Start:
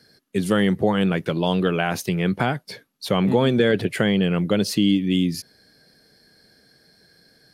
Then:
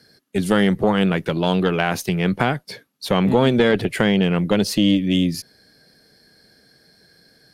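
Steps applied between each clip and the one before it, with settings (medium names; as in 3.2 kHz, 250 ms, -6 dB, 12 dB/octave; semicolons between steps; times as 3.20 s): Chebyshev shaper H 2 -12 dB, 5 -31 dB, 7 -36 dB, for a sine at -6 dBFS; trim +1.5 dB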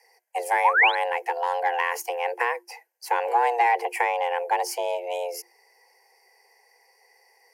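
painted sound rise, 0.64–0.95 s, 500–3900 Hz -14 dBFS; static phaser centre 900 Hz, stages 6; frequency shift +350 Hz; trim -2 dB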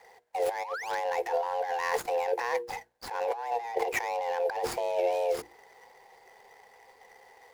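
median filter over 15 samples; hum notches 60/120/180/240/300/360/420/480 Hz; compressor with a negative ratio -33 dBFS, ratio -1; trim +2 dB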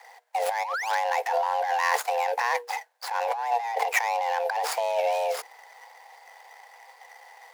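inverse Chebyshev high-pass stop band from 310 Hz, stop band 40 dB; trim +7 dB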